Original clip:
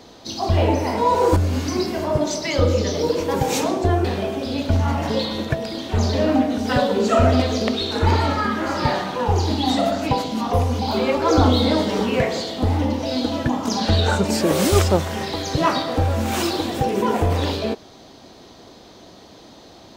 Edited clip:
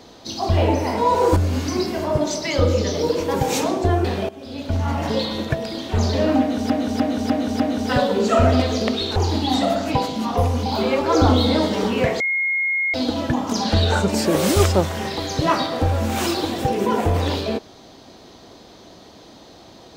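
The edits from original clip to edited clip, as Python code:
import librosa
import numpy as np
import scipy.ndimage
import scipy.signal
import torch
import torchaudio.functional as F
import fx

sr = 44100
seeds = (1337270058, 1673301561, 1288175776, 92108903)

y = fx.edit(x, sr, fx.fade_in_from(start_s=4.29, length_s=0.76, floor_db=-16.5),
    fx.repeat(start_s=6.4, length_s=0.3, count=5),
    fx.cut(start_s=7.96, length_s=1.36),
    fx.bleep(start_s=12.36, length_s=0.74, hz=2150.0, db=-18.0), tone=tone)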